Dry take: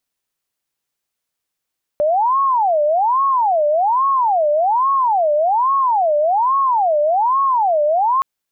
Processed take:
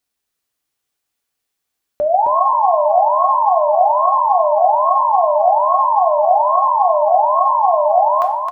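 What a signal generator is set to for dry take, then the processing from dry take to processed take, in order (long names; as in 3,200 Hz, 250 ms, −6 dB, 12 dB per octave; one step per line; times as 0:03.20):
siren wail 590–1,100 Hz 1.2 per second sine −12.5 dBFS 6.22 s
repeating echo 265 ms, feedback 28%, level −5 dB
coupled-rooms reverb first 0.46 s, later 2.2 s, from −17 dB, DRR 4 dB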